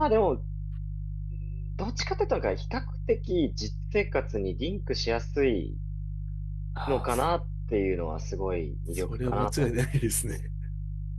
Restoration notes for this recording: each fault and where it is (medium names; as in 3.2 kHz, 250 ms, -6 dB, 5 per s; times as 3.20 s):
hum 50 Hz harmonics 3 -34 dBFS